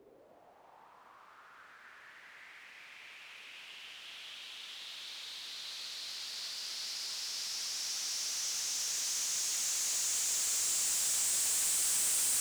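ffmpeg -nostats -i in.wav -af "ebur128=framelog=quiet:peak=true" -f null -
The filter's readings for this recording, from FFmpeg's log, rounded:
Integrated loudness:
  I:         -32.0 LUFS
  Threshold: -44.0 LUFS
Loudness range:
  LRA:        21.2 LU
  Threshold: -55.1 LUFS
  LRA low:   -50.9 LUFS
  LRA high:  -29.7 LUFS
True peak:
  Peak:      -24.4 dBFS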